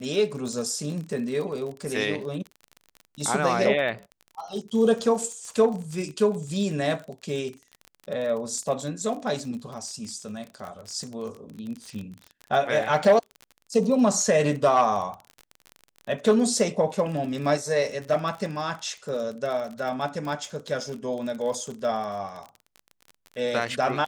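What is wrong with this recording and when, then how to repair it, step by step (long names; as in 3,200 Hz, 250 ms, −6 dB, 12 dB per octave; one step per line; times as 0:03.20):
surface crackle 31 per second −32 dBFS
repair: click removal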